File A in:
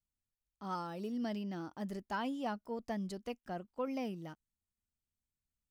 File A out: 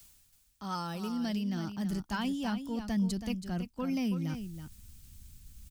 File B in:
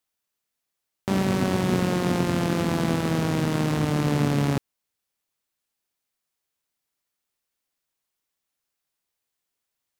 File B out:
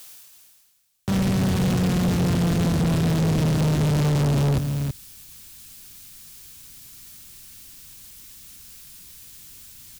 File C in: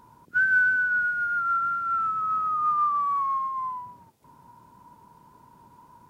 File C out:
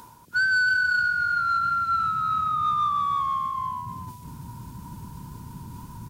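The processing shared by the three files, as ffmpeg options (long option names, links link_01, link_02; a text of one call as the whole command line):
ffmpeg -i in.wav -filter_complex "[0:a]asubboost=boost=11:cutoff=180,areverse,acompressor=mode=upward:threshold=-32dB:ratio=2.5,areverse,highshelf=frequency=2300:gain=12,bandreject=frequency=2000:width=27,acrossover=split=140[link_01][link_02];[link_01]alimiter=limit=-16.5dB:level=0:latency=1[link_03];[link_02]asoftclip=type=tanh:threshold=-18.5dB[link_04];[link_03][link_04]amix=inputs=2:normalize=0,aecho=1:1:326:0.335,asoftclip=type=hard:threshold=-18.5dB" out.wav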